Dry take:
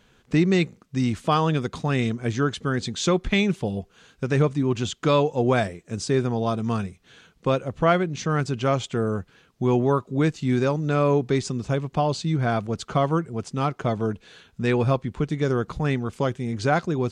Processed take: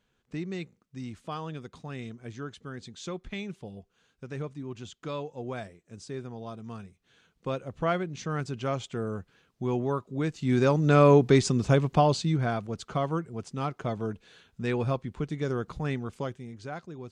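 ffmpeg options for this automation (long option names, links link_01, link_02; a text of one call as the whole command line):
ffmpeg -i in.wav -af "volume=2.5dB,afade=type=in:start_time=6.86:duration=0.97:silence=0.421697,afade=type=in:start_time=10.29:duration=0.63:silence=0.298538,afade=type=out:start_time=11.85:duration=0.72:silence=0.334965,afade=type=out:start_time=16.05:duration=0.53:silence=0.316228" out.wav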